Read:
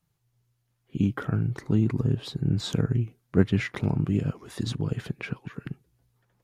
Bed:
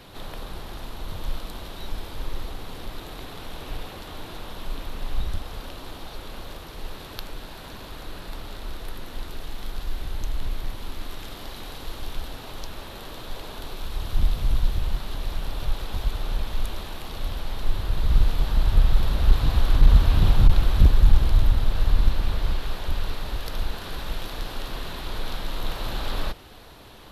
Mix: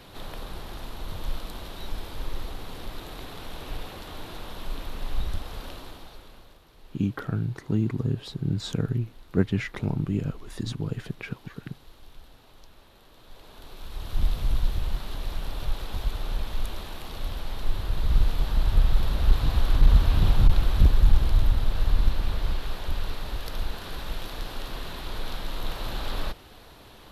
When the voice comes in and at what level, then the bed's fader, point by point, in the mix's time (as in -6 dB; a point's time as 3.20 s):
6.00 s, -2.0 dB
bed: 5.73 s -1.5 dB
6.60 s -16.5 dB
13.10 s -16.5 dB
14.26 s -2.5 dB